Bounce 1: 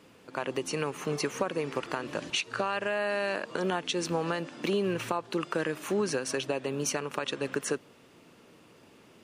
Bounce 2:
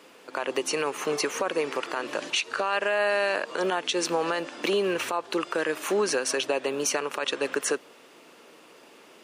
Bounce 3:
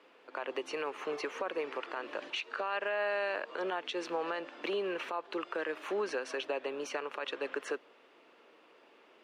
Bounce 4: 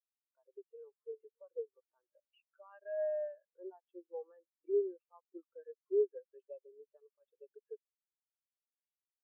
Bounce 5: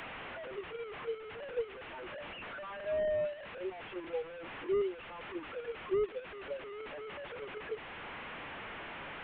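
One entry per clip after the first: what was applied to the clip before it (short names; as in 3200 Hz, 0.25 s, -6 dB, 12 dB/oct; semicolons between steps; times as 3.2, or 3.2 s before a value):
HPF 380 Hz 12 dB/oct; limiter -22.5 dBFS, peak gain reduction 8 dB; gain +7 dB
three-band isolator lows -13 dB, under 250 Hz, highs -19 dB, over 3900 Hz; gain -8 dB
spectral expander 4:1
delta modulation 16 kbps, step -48 dBFS; three-band squash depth 40%; gain +7.5 dB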